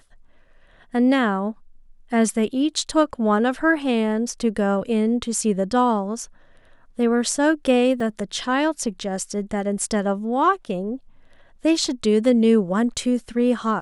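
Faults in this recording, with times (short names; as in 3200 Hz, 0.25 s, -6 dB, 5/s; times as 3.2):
8 gap 3.3 ms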